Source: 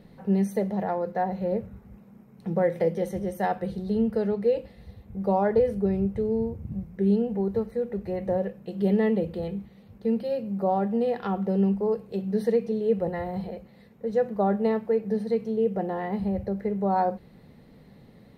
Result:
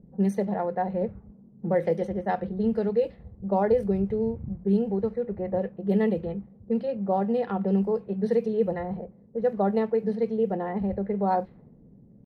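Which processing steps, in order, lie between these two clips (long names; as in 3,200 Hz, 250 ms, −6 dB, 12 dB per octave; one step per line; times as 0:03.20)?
tempo change 1.5×
low-pass that shuts in the quiet parts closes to 320 Hz, open at −19.5 dBFS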